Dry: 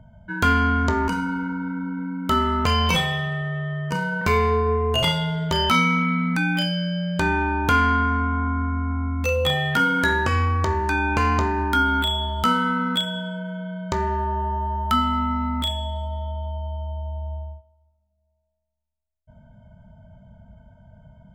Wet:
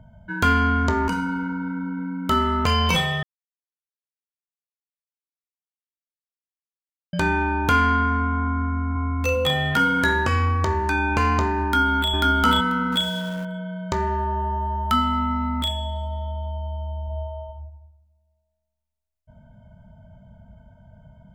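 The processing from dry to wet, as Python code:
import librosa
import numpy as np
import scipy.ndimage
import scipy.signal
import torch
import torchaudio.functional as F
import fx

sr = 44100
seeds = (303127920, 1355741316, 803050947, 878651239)

y = fx.echo_throw(x, sr, start_s=8.57, length_s=0.4, ms=380, feedback_pct=65, wet_db=-7.0)
y = fx.echo_throw(y, sr, start_s=11.64, length_s=0.47, ms=490, feedback_pct=15, wet_db=-0.5)
y = fx.zero_step(y, sr, step_db=-35.5, at=(12.92, 13.45))
y = fx.reverb_throw(y, sr, start_s=17.04, length_s=0.42, rt60_s=0.96, drr_db=-0.5)
y = fx.edit(y, sr, fx.silence(start_s=3.23, length_s=3.9), tone=tone)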